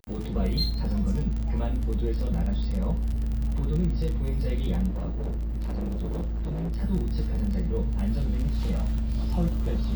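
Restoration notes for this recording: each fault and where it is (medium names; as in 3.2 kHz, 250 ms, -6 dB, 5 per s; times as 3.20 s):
crackle 32 per s -30 dBFS
4.88–6.83 s: clipped -26.5 dBFS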